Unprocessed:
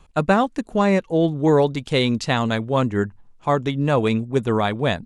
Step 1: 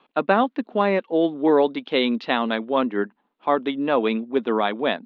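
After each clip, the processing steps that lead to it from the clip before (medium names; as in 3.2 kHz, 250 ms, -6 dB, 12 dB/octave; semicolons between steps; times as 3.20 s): elliptic band-pass 240–3600 Hz, stop band 40 dB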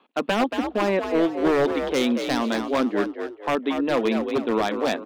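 resonant low shelf 150 Hz -12 dB, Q 1.5; wavefolder -12.5 dBFS; frequency-shifting echo 230 ms, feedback 36%, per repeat +55 Hz, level -7 dB; trim -2 dB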